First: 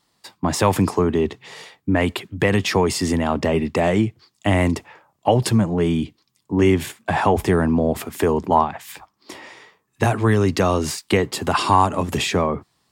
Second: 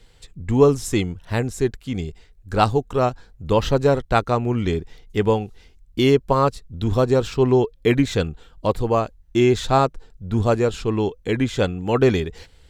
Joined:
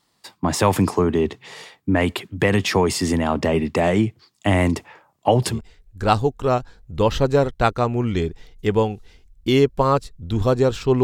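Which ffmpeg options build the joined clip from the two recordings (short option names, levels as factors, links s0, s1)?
-filter_complex "[0:a]apad=whole_dur=11.03,atrim=end=11.03,atrim=end=5.61,asetpts=PTS-STARTPTS[s0];[1:a]atrim=start=1.96:end=7.54,asetpts=PTS-STARTPTS[s1];[s0][s1]acrossfade=d=0.16:c1=tri:c2=tri"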